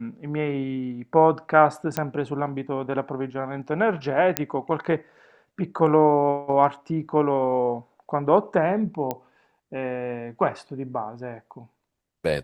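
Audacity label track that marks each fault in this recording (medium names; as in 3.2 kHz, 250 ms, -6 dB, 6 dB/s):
1.970000	1.970000	pop -10 dBFS
4.370000	4.370000	pop -3 dBFS
9.110000	9.110000	pop -13 dBFS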